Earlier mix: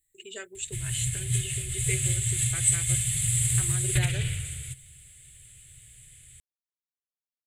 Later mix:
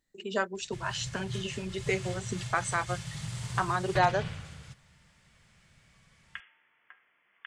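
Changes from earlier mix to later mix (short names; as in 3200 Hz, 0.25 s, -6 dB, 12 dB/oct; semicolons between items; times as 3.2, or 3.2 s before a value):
first sound -10.0 dB; second sound: unmuted; master: remove EQ curve 130 Hz 0 dB, 190 Hz -22 dB, 360 Hz -6 dB, 1000 Hz -26 dB, 2100 Hz -1 dB, 3700 Hz -1 dB, 5500 Hz -16 dB, 7700 Hz +15 dB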